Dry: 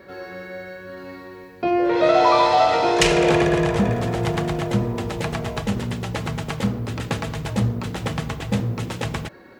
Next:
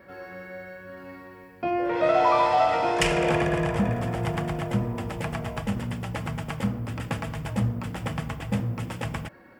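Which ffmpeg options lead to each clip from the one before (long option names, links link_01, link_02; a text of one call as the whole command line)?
ffmpeg -i in.wav -af "equalizer=frequency=400:width_type=o:width=0.33:gain=-9,equalizer=frequency=4000:width_type=o:width=0.33:gain=-12,equalizer=frequency=6300:width_type=o:width=0.33:gain=-7,volume=-4dB" out.wav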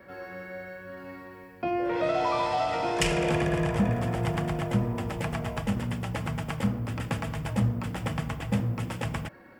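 ffmpeg -i in.wav -filter_complex "[0:a]acrossover=split=340|3000[link_01][link_02][link_03];[link_02]acompressor=threshold=-31dB:ratio=2[link_04];[link_01][link_04][link_03]amix=inputs=3:normalize=0" out.wav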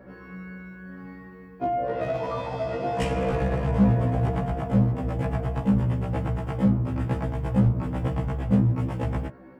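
ffmpeg -i in.wav -af "tiltshelf=frequency=1400:gain=9.5,volume=13.5dB,asoftclip=hard,volume=-13.5dB,afftfilt=real='re*1.73*eq(mod(b,3),0)':imag='im*1.73*eq(mod(b,3),0)':win_size=2048:overlap=0.75" out.wav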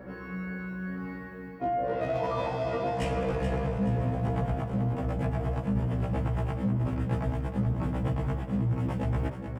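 ffmpeg -i in.wav -af "areverse,acompressor=threshold=-30dB:ratio=6,areverse,aecho=1:1:427|854|1281|1708:0.376|0.139|0.0515|0.019,volume=3.5dB" out.wav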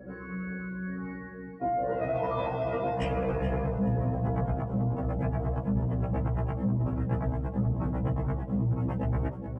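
ffmpeg -i in.wav -af "afftdn=noise_reduction=16:noise_floor=-44" out.wav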